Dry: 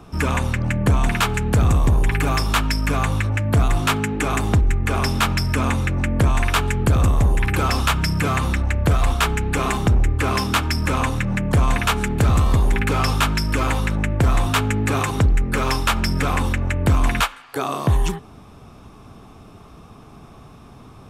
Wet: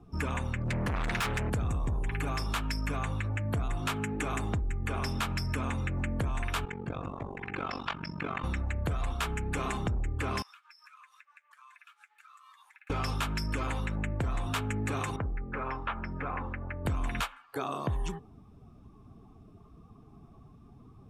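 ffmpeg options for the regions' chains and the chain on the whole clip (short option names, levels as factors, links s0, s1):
-filter_complex "[0:a]asettb=1/sr,asplit=3[s0][s1][s2];[s0]atrim=end=0.644[s3];[s1]atrim=start=0.64:end=1.5,asetpts=PTS-STARTPTS,afade=t=in:d=0.004:c=qsin,afade=t=out:st=0.856:d=0.004:c=qsin,asoftclip=type=hard:threshold=0.0596,adynamicequalizer=threshold=0.00794:dfrequency=1800:dqfactor=0.87:tfrequency=1800:tqfactor=0.87:attack=5:release=100:ratio=0.375:range=2.5:mode=boostabove:tftype=bell,acontrast=31[s4];[s2]atrim=start=1.496[s5];[s3][s4]acrossfade=d=0.004:c1=hsin:c2=qsin[s6];[s6][s5]acrossfade=d=0.004:c1=qsin:c2=hsin,asettb=1/sr,asplit=3[s7][s8][s9];[s7]atrim=end=6.654[s10];[s8]atrim=start=6.65:end=8.44,asetpts=PTS-STARTPTS,afade=t=in:d=0.004:c=qsin,afade=t=out:st=1.786:d=0.004:c=qsin,highpass=180,lowpass=4400,tremolo=f=47:d=0.889[s11];[s9]atrim=start=8.436[s12];[s10][s11]acrossfade=d=0.004:c1=hsin:c2=qsin[s13];[s13][s12]acrossfade=d=0.004:c1=qsin:c2=hsin,asettb=1/sr,asplit=3[s14][s15][s16];[s14]atrim=end=10.424[s17];[s15]atrim=start=10.42:end=12.9,asetpts=PTS-STARTPTS,afade=t=in:d=0.004:c=qsin,afade=t=out:st=2.476:d=0.004:c=qsin,highpass=f=1200:w=0.5412,highpass=f=1200:w=1.3066,acompressor=threshold=0.0178:ratio=12:attack=3.2:release=140:knee=1:detection=peak,flanger=delay=3.2:depth=9.4:regen=-65:speed=1.5:shape=triangular[s18];[s16]atrim=start=12.896[s19];[s17][s18]acrossfade=d=0.004:c1=hsin:c2=qsin[s20];[s20][s19]acrossfade=d=0.004:c1=qsin:c2=hsin,asettb=1/sr,asplit=3[s21][s22][s23];[s21]atrim=end=15.164[s24];[s22]atrim=start=15.16:end=16.85,asetpts=PTS-STARTPTS,afade=t=in:d=0.004:c=qsin,afade=t=out:st=1.686:d=0.004:c=qsin,lowpass=1700,lowshelf=f=470:g=-8.5[s25];[s23]atrim=start=16.846[s26];[s24][s25]acrossfade=d=0.004:c1=hsin:c2=qsin[s27];[s27][s26]acrossfade=d=0.004:c1=qsin:c2=hsin,afftdn=nr=14:nf=-40,acompressor=threshold=0.112:ratio=6,volume=0.355"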